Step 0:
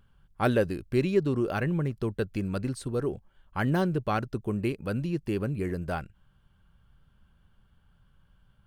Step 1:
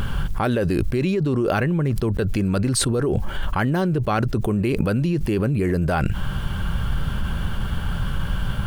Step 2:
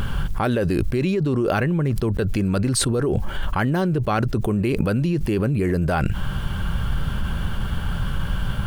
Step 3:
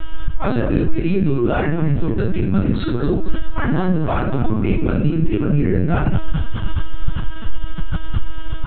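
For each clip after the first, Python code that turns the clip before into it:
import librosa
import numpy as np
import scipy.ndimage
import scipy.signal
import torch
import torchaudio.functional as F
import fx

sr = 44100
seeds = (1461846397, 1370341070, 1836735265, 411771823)

y1 = fx.env_flatten(x, sr, amount_pct=100)
y1 = y1 * 10.0 ** (-1.5 / 20.0)
y2 = y1
y3 = fx.echo_feedback(y2, sr, ms=228, feedback_pct=47, wet_db=-12)
y3 = fx.room_shoebox(y3, sr, seeds[0], volume_m3=650.0, walls='furnished', distance_m=3.2)
y3 = fx.lpc_vocoder(y3, sr, seeds[1], excitation='pitch_kept', order=16)
y3 = y3 * 10.0 ** (-3.5 / 20.0)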